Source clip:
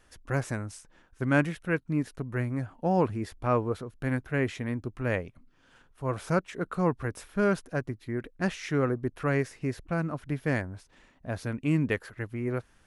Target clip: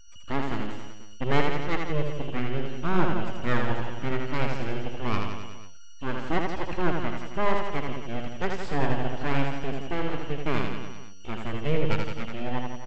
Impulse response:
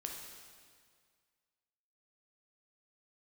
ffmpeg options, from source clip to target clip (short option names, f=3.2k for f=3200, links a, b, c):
-af "aeval=exprs='val(0)+0.00447*sin(2*PI*2900*n/s)':c=same,afftfilt=real='re*gte(hypot(re,im),0.00562)':imag='im*gte(hypot(re,im),0.00562)':win_size=1024:overlap=0.75,aresample=16000,aeval=exprs='abs(val(0))':c=same,aresample=44100,bass=f=250:g=3,treble=f=4k:g=-8,aecho=1:1:80|168|264.8|371.3|488.4:0.631|0.398|0.251|0.158|0.1,volume=1.5dB"